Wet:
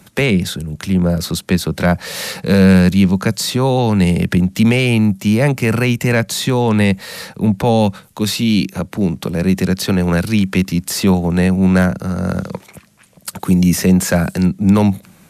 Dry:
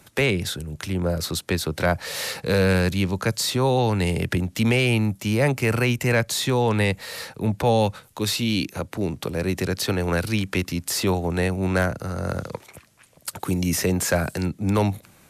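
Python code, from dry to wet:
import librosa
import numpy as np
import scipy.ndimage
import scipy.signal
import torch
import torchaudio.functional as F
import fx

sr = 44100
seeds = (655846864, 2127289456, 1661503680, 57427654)

y = fx.peak_eq(x, sr, hz=190.0, db=10.5, octaves=0.52)
y = F.gain(torch.from_numpy(y), 4.5).numpy()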